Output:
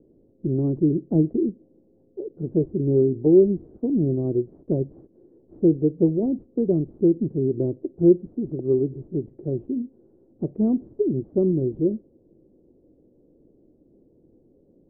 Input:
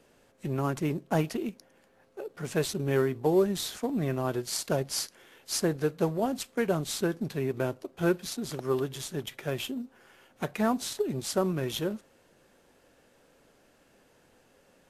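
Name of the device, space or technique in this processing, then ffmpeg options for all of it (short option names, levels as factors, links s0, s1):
under water: -af "lowpass=f=430:w=0.5412,lowpass=f=430:w=1.3066,equalizer=f=330:t=o:w=0.36:g=7.5,volume=2.24"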